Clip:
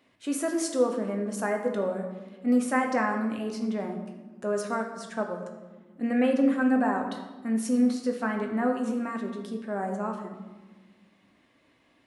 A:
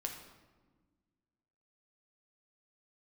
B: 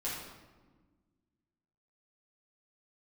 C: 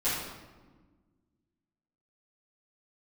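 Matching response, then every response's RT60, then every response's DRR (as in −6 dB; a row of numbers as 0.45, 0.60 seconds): A; 1.4, 1.4, 1.4 seconds; 2.0, −8.0, −12.5 decibels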